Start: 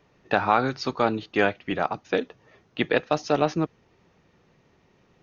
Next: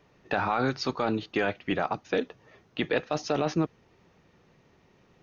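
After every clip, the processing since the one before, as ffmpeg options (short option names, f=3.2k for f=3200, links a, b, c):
-af "alimiter=limit=-15.5dB:level=0:latency=1:release=10"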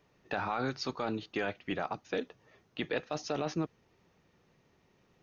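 -af "highshelf=f=5.5k:g=5.5,volume=-7dB"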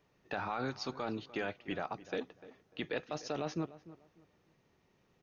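-filter_complex "[0:a]asplit=2[a][b];[b]adelay=297,lowpass=f=1.9k:p=1,volume=-16.5dB,asplit=2[c][d];[d]adelay=297,lowpass=f=1.9k:p=1,volume=0.26,asplit=2[e][f];[f]adelay=297,lowpass=f=1.9k:p=1,volume=0.26[g];[a][c][e][g]amix=inputs=4:normalize=0,volume=-3.5dB"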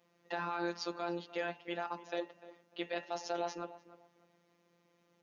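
-af "afreqshift=96,afftfilt=real='hypot(re,im)*cos(PI*b)':imag='0':win_size=1024:overlap=0.75,bandreject=f=78.72:t=h:w=4,bandreject=f=157.44:t=h:w=4,bandreject=f=236.16:t=h:w=4,bandreject=f=314.88:t=h:w=4,bandreject=f=393.6:t=h:w=4,bandreject=f=472.32:t=h:w=4,bandreject=f=551.04:t=h:w=4,bandreject=f=629.76:t=h:w=4,bandreject=f=708.48:t=h:w=4,bandreject=f=787.2:t=h:w=4,bandreject=f=865.92:t=h:w=4,bandreject=f=944.64:t=h:w=4,bandreject=f=1.02336k:t=h:w=4,bandreject=f=1.10208k:t=h:w=4,bandreject=f=1.1808k:t=h:w=4,bandreject=f=1.25952k:t=h:w=4,bandreject=f=1.33824k:t=h:w=4,bandreject=f=1.41696k:t=h:w=4,bandreject=f=1.49568k:t=h:w=4,bandreject=f=1.5744k:t=h:w=4,bandreject=f=1.65312k:t=h:w=4,bandreject=f=1.73184k:t=h:w=4,bandreject=f=1.81056k:t=h:w=4,bandreject=f=1.88928k:t=h:w=4,bandreject=f=1.968k:t=h:w=4,bandreject=f=2.04672k:t=h:w=4,bandreject=f=2.12544k:t=h:w=4,bandreject=f=2.20416k:t=h:w=4,bandreject=f=2.28288k:t=h:w=4,bandreject=f=2.3616k:t=h:w=4,bandreject=f=2.44032k:t=h:w=4,bandreject=f=2.51904k:t=h:w=4,bandreject=f=2.59776k:t=h:w=4,bandreject=f=2.67648k:t=h:w=4,bandreject=f=2.7552k:t=h:w=4,bandreject=f=2.83392k:t=h:w=4,bandreject=f=2.91264k:t=h:w=4,bandreject=f=2.99136k:t=h:w=4,bandreject=f=3.07008k:t=h:w=4,bandreject=f=3.1488k:t=h:w=4,volume=3.5dB"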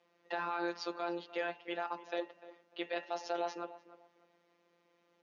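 -af "highpass=280,lowpass=4.9k,volume=1dB"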